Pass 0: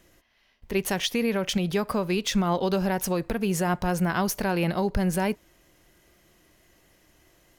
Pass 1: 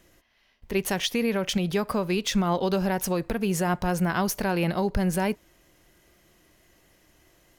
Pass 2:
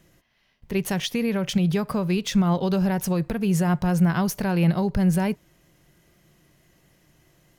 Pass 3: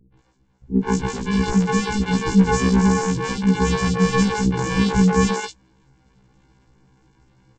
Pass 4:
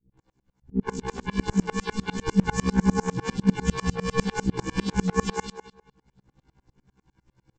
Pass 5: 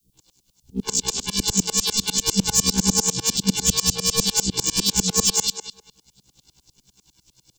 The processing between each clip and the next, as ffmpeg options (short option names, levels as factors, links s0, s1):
-af anull
-af "equalizer=f=150:w=1.9:g=12,volume=0.841"
-filter_complex "[0:a]aresample=16000,acrusher=samples=25:mix=1:aa=0.000001,aresample=44100,acrossover=split=390|3500[s0][s1][s2];[s1]adelay=130[s3];[s2]adelay=180[s4];[s0][s3][s4]amix=inputs=3:normalize=0,afftfilt=real='re*1.73*eq(mod(b,3),0)':imag='im*1.73*eq(mod(b,3),0)':win_size=2048:overlap=0.75,volume=2.11"
-filter_complex "[0:a]aphaser=in_gain=1:out_gain=1:delay=3.2:decay=0.25:speed=0.31:type=sinusoidal,asplit=2[s0][s1];[s1]adelay=216,lowpass=f=3600:p=1,volume=0.316,asplit=2[s2][s3];[s3]adelay=216,lowpass=f=3600:p=1,volume=0.2,asplit=2[s4][s5];[s5]adelay=216,lowpass=f=3600:p=1,volume=0.2[s6];[s0][s2][s4][s6]amix=inputs=4:normalize=0,aeval=exprs='val(0)*pow(10,-30*if(lt(mod(-10*n/s,1),2*abs(-10)/1000),1-mod(-10*n/s,1)/(2*abs(-10)/1000),(mod(-10*n/s,1)-2*abs(-10)/1000)/(1-2*abs(-10)/1000))/20)':c=same"
-filter_complex "[0:a]acrossover=split=270|370|1200[s0][s1][s2][s3];[s3]asoftclip=type=hard:threshold=0.0211[s4];[s0][s1][s2][s4]amix=inputs=4:normalize=0,aexciter=amount=11.5:drive=7.4:freq=2900,volume=0.841"